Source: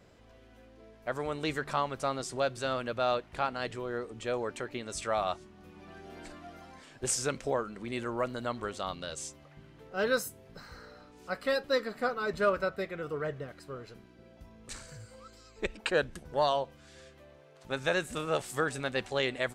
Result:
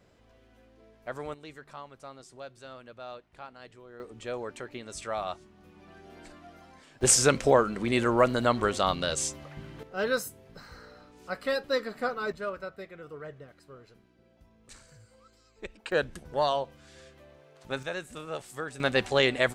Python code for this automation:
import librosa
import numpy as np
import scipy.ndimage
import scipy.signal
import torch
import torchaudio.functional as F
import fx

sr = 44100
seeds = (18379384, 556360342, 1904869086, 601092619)

y = fx.gain(x, sr, db=fx.steps((0.0, -3.0), (1.34, -13.5), (4.0, -2.5), (7.01, 10.0), (9.83, 0.5), (12.32, -7.5), (15.92, 1.0), (17.83, -6.0), (18.8, 7.0)))